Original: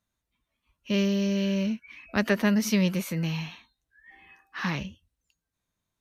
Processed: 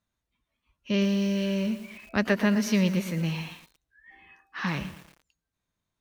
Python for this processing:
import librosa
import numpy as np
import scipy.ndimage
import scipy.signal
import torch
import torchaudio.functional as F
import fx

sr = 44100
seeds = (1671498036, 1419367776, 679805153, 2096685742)

y = fx.high_shelf(x, sr, hz=8600.0, db=-9.0)
y = fx.echo_crushed(y, sr, ms=115, feedback_pct=55, bits=7, wet_db=-12.0)